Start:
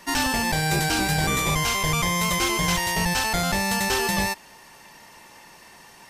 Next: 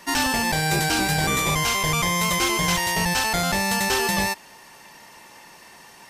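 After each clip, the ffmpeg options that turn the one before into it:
ffmpeg -i in.wav -af "lowshelf=frequency=97:gain=-6,volume=1.5dB" out.wav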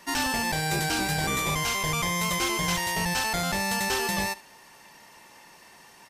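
ffmpeg -i in.wav -af "aecho=1:1:75:0.1,volume=-5dB" out.wav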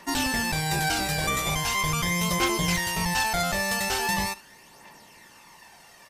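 ffmpeg -i in.wav -af "aphaser=in_gain=1:out_gain=1:delay=1.8:decay=0.43:speed=0.41:type=triangular" out.wav

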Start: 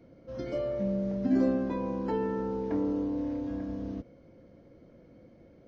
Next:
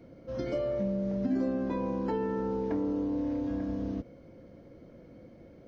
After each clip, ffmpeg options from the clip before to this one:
ffmpeg -i in.wav -af "acompressor=threshold=-32dB:ratio=3,volume=3.5dB" out.wav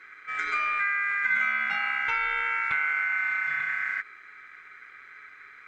ffmpeg -i in.wav -af "aeval=exprs='val(0)*sin(2*PI*1800*n/s)':channel_layout=same,volume=6.5dB" out.wav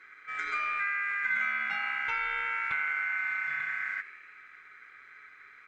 ffmpeg -i in.wav -filter_complex "[0:a]asplit=8[link_01][link_02][link_03][link_04][link_05][link_06][link_07][link_08];[link_02]adelay=82,afreqshift=80,volume=-16.5dB[link_09];[link_03]adelay=164,afreqshift=160,volume=-20.4dB[link_10];[link_04]adelay=246,afreqshift=240,volume=-24.3dB[link_11];[link_05]adelay=328,afreqshift=320,volume=-28.1dB[link_12];[link_06]adelay=410,afreqshift=400,volume=-32dB[link_13];[link_07]adelay=492,afreqshift=480,volume=-35.9dB[link_14];[link_08]adelay=574,afreqshift=560,volume=-39.8dB[link_15];[link_01][link_09][link_10][link_11][link_12][link_13][link_14][link_15]amix=inputs=8:normalize=0,volume=-4.5dB" out.wav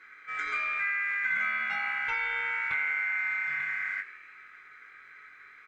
ffmpeg -i in.wav -filter_complex "[0:a]asplit=2[link_01][link_02];[link_02]adelay=21,volume=-6dB[link_03];[link_01][link_03]amix=inputs=2:normalize=0" out.wav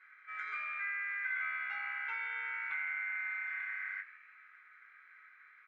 ffmpeg -i in.wav -af "bandpass=frequency=1600:width_type=q:width=1:csg=0,volume=-7dB" out.wav

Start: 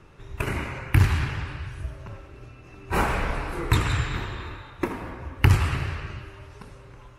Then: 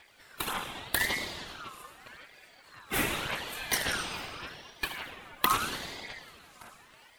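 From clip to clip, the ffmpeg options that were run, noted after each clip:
ffmpeg -i in.wav -af "aemphasis=mode=production:type=bsi,aphaser=in_gain=1:out_gain=1:delay=3.9:decay=0.57:speed=1.8:type=sinusoidal,aeval=exprs='val(0)*sin(2*PI*1600*n/s+1600*0.3/0.83*sin(2*PI*0.83*n/s))':channel_layout=same,volume=-4dB" out.wav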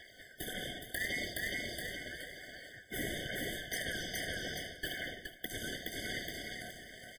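ffmpeg -i in.wav -af "aecho=1:1:420|840|1260:0.473|0.114|0.0273,areverse,acompressor=threshold=-39dB:ratio=6,areverse,afftfilt=real='re*eq(mod(floor(b*sr/1024/740),2),0)':imag='im*eq(mod(floor(b*sr/1024/740),2),0)':win_size=1024:overlap=0.75,volume=5.5dB" out.wav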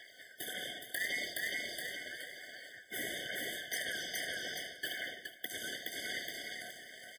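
ffmpeg -i in.wav -af "highpass=frequency=620:poles=1,volume=1dB" out.wav

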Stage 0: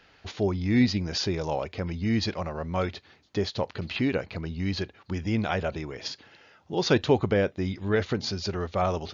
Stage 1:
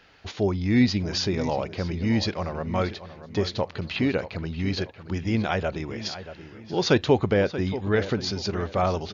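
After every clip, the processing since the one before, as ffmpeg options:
ffmpeg -i in.wav -filter_complex "[0:a]asplit=2[link_01][link_02];[link_02]adelay=632,lowpass=frequency=3100:poles=1,volume=-12.5dB,asplit=2[link_03][link_04];[link_04]adelay=632,lowpass=frequency=3100:poles=1,volume=0.36,asplit=2[link_05][link_06];[link_06]adelay=632,lowpass=frequency=3100:poles=1,volume=0.36,asplit=2[link_07][link_08];[link_08]adelay=632,lowpass=frequency=3100:poles=1,volume=0.36[link_09];[link_01][link_03][link_05][link_07][link_09]amix=inputs=5:normalize=0,volume=2dB" out.wav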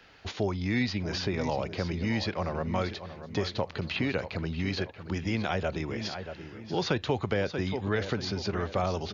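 ffmpeg -i in.wav -filter_complex "[0:a]acrossover=split=160|580|3300[link_01][link_02][link_03][link_04];[link_01]acompressor=threshold=-34dB:ratio=4[link_05];[link_02]acompressor=threshold=-32dB:ratio=4[link_06];[link_03]acompressor=threshold=-31dB:ratio=4[link_07];[link_04]acompressor=threshold=-41dB:ratio=4[link_08];[link_05][link_06][link_07][link_08]amix=inputs=4:normalize=0" out.wav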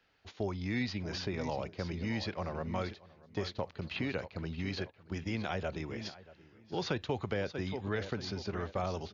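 ffmpeg -i in.wav -af "agate=range=-10dB:threshold=-34dB:ratio=16:detection=peak,volume=-6dB" out.wav

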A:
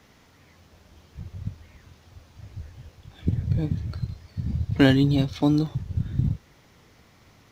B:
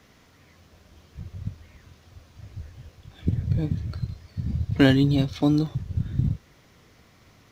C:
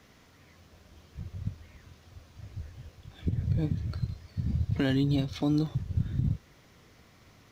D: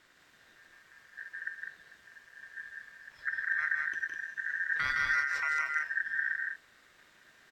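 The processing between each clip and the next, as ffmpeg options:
ffmpeg -i in.wav -af "bandreject=frequency=860:width=12" out.wav
ffmpeg -i in.wav -af "alimiter=limit=-15.5dB:level=0:latency=1:release=147,volume=-2dB" out.wav
ffmpeg -i in.wav -af "aeval=exprs='val(0)*sin(2*PI*1700*n/s)':channel_layout=same,aecho=1:1:160.3|201.2:0.562|0.562,volume=-3dB" out.wav

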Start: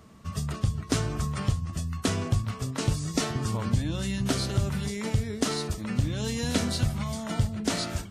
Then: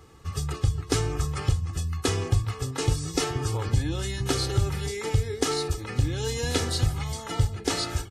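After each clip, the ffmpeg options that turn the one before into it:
ffmpeg -i in.wav -af "aecho=1:1:2.4:0.86" out.wav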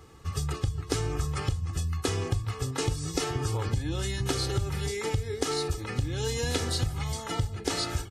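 ffmpeg -i in.wav -af "acompressor=threshold=-24dB:ratio=6" out.wav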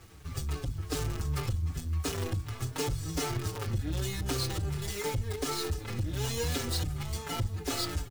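ffmpeg -i in.wav -filter_complex "[0:a]acrossover=split=300[link_01][link_02];[link_02]acrusher=bits=6:dc=4:mix=0:aa=0.000001[link_03];[link_01][link_03]amix=inputs=2:normalize=0,asoftclip=type=tanh:threshold=-26.5dB,asplit=2[link_04][link_05];[link_05]adelay=5.5,afreqshift=-2.7[link_06];[link_04][link_06]amix=inputs=2:normalize=1,volume=3.5dB" out.wav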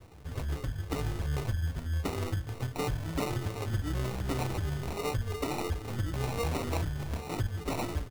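ffmpeg -i in.wav -af "acrusher=samples=27:mix=1:aa=0.000001" out.wav

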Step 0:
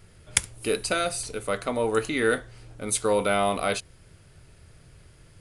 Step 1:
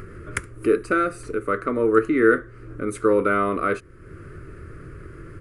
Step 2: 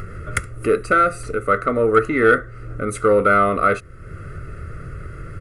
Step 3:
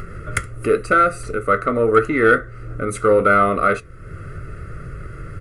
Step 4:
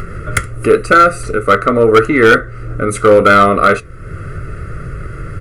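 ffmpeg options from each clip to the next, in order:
ffmpeg -i in.wav -filter_complex "[0:a]firequalizer=gain_entry='entry(200,0);entry(340,11);entry(800,-16);entry(1200,8);entry(3400,-19);entry(5200,-18);entry(7800,-16)':delay=0.05:min_phase=1,asplit=2[link_01][link_02];[link_02]acompressor=mode=upward:threshold=-23dB:ratio=2.5,volume=2dB[link_03];[link_01][link_03]amix=inputs=2:normalize=0,volume=-5.5dB" out.wav
ffmpeg -i in.wav -af "acontrast=43,aecho=1:1:1.5:0.57,volume=-1dB" out.wav
ffmpeg -i in.wav -af "flanger=delay=4.9:depth=3:regen=-78:speed=0.82:shape=triangular,volume=5dB" out.wav
ffmpeg -i in.wav -af "asoftclip=type=hard:threshold=-9dB,volume=7.5dB" out.wav

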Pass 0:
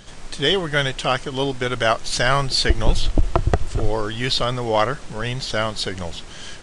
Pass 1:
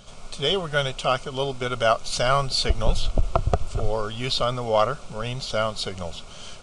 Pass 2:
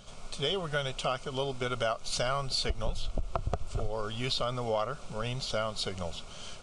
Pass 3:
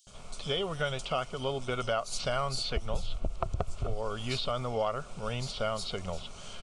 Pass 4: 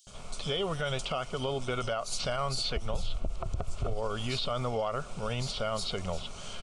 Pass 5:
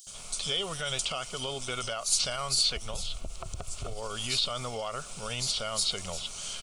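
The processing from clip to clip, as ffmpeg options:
ffmpeg -i in.wav -af "superequalizer=6b=0.355:8b=1.58:10b=1.41:11b=0.282,volume=-4dB" out.wav
ffmpeg -i in.wav -af "acompressor=threshold=-23dB:ratio=5,volume=-4dB" out.wav
ffmpeg -i in.wav -filter_complex "[0:a]acrossover=split=4600[link_01][link_02];[link_01]adelay=70[link_03];[link_03][link_02]amix=inputs=2:normalize=0" out.wav
ffmpeg -i in.wav -af "alimiter=level_in=1.5dB:limit=-24dB:level=0:latency=1:release=42,volume=-1.5dB,volume=3dB" out.wav
ffmpeg -i in.wav -af "crystalizer=i=7:c=0,volume=-6dB" out.wav

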